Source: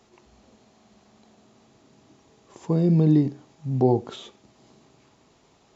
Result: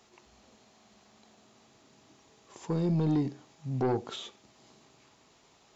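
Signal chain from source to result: tilt shelf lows -4 dB, about 730 Hz; saturation -18.5 dBFS, distortion -14 dB; trim -3 dB

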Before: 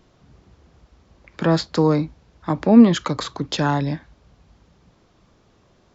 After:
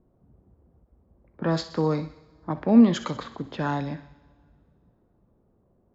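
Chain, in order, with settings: level-controlled noise filter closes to 600 Hz, open at -13.5 dBFS; thinning echo 63 ms, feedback 65%, high-pass 1 kHz, level -13 dB; two-slope reverb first 0.58 s, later 2.5 s, from -17 dB, DRR 13 dB; endings held to a fixed fall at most 330 dB/s; trim -6.5 dB

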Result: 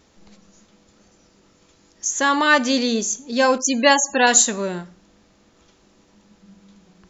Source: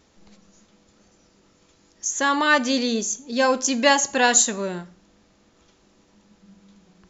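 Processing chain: 3.58–4.27 s: loudest bins only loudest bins 64; trim +2.5 dB

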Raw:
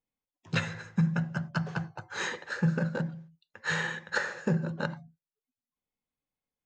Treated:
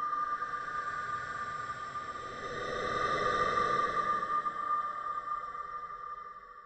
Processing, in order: split-band scrambler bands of 1 kHz; Paulstretch 26×, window 0.10 s, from 1.64 s

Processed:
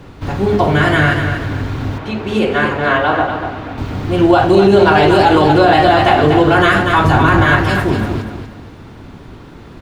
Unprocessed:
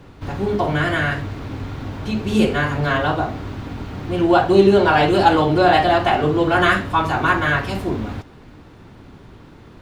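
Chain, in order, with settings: 7.04–7.45 s: bass shelf 360 Hz +8.5 dB; feedback delay 240 ms, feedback 32%, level -7.5 dB; peak limiter -7.5 dBFS, peak gain reduction 7 dB; 1.98–3.78 s: tone controls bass -10 dB, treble -11 dB; trim +6.5 dB

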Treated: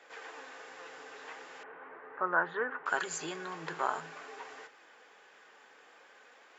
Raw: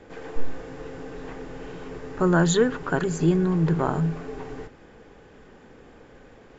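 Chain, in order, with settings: high-pass 990 Hz 12 dB/octave; flange 0.44 Hz, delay 1.4 ms, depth 6 ms, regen +74%; 1.63–2.86 s: low-pass 1.8 kHz 24 dB/octave; trim +4 dB

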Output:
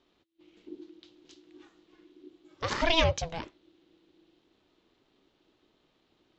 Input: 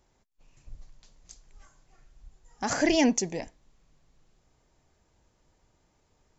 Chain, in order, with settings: resonant low-pass 3.5 kHz, resonance Q 4.6; ring modulator 330 Hz

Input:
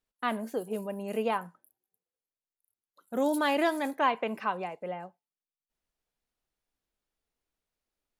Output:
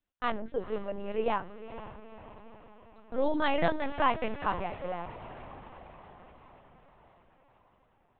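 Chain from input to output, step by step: echo that smears into a reverb 480 ms, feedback 59%, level -13 dB; LPC vocoder at 8 kHz pitch kept

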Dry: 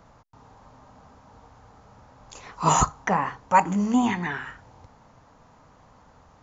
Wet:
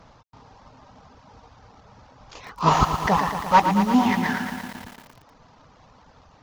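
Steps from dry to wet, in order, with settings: CVSD coder 32 kbps; reverb removal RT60 0.65 s; bit-crushed delay 115 ms, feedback 80%, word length 7-bit, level -8 dB; trim +3.5 dB

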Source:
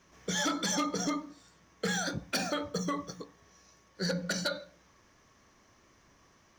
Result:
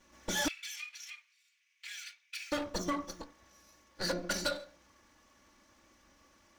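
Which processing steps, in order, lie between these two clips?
comb filter that takes the minimum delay 3.5 ms; 0.48–2.52 s: ladder high-pass 2.2 kHz, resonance 70%

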